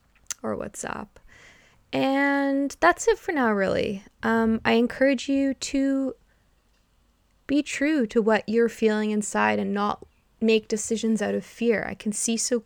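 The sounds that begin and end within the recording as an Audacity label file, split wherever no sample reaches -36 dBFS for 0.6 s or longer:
1.930000	6.120000	sound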